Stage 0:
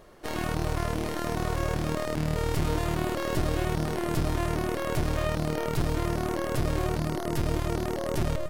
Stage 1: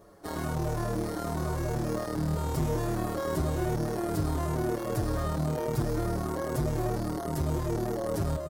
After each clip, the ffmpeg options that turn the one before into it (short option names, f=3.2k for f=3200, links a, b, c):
-filter_complex "[0:a]highpass=49,equalizer=f=2.7k:w=1.1:g=-11.5,asplit=2[a][b];[b]adelay=6.6,afreqshift=-1[c];[a][c]amix=inputs=2:normalize=1,volume=2.5dB"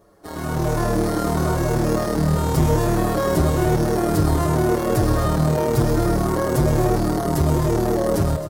-filter_complex "[0:a]asplit=2[a][b];[b]aecho=0:1:125.4|265.3:0.251|0.282[c];[a][c]amix=inputs=2:normalize=0,dynaudnorm=f=110:g=9:m=10.5dB"